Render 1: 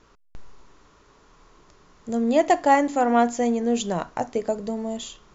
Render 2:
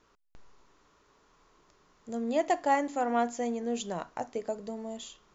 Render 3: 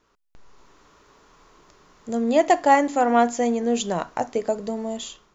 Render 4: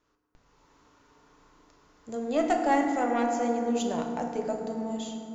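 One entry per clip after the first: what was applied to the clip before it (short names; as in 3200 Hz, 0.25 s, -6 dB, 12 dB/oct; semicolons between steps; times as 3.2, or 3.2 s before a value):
low shelf 180 Hz -6.5 dB; gain -8 dB
AGC gain up to 10 dB
one diode to ground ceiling -9 dBFS; FDN reverb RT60 2.6 s, low-frequency decay 1.45×, high-frequency decay 0.4×, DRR 1.5 dB; gain -8.5 dB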